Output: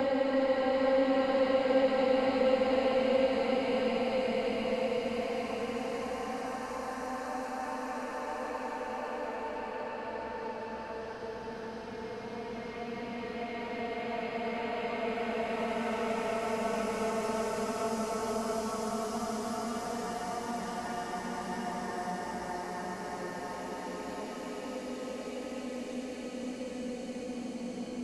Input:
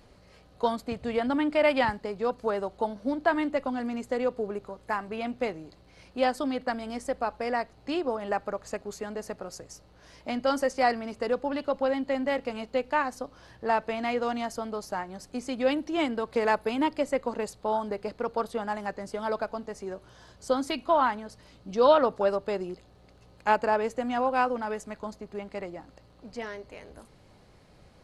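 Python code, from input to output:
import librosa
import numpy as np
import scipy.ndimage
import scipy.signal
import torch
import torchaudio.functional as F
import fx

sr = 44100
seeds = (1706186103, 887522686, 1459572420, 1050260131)

y = fx.block_reorder(x, sr, ms=82.0, group=6)
y = fx.auto_swell(y, sr, attack_ms=589.0)
y = fx.paulstretch(y, sr, seeds[0], factor=7.6, window_s=1.0, from_s=12.03)
y = fx.band_squash(y, sr, depth_pct=40)
y = y * 10.0 ** (4.0 / 20.0)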